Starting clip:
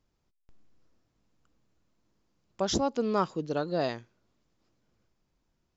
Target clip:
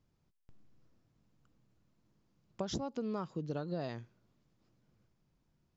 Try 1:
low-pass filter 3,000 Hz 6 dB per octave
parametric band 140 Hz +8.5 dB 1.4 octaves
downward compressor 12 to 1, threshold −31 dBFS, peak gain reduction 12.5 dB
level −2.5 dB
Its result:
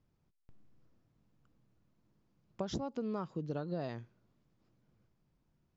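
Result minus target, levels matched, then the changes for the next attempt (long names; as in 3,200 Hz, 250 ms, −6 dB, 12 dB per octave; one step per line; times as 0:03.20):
8,000 Hz band −4.5 dB
change: low-pass filter 7,300 Hz 6 dB per octave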